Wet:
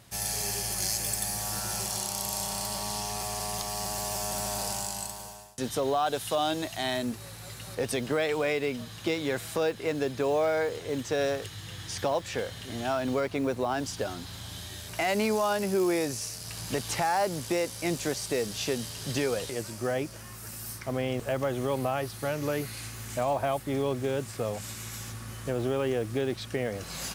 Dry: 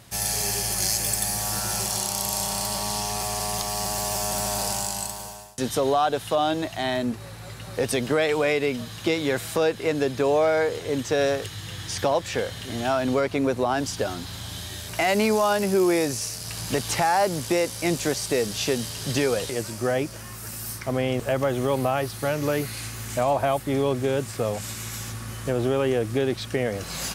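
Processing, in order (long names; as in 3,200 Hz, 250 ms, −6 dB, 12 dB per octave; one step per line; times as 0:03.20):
0:06.06–0:07.75: high-shelf EQ 3,800 Hz +9.5 dB
noise that follows the level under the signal 31 dB
level −5.5 dB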